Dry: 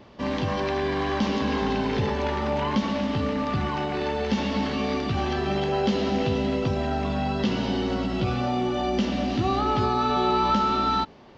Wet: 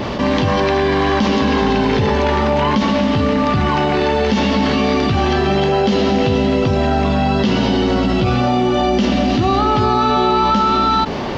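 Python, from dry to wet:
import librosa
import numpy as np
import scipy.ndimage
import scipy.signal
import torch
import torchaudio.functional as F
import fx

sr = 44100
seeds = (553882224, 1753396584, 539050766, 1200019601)

y = fx.env_flatten(x, sr, amount_pct=70)
y = y * 10.0 ** (6.0 / 20.0)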